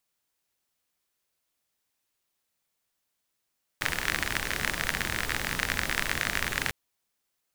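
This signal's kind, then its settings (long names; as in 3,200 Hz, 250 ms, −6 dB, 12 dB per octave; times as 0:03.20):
rain-like ticks over hiss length 2.90 s, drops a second 43, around 1,800 Hz, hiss −3 dB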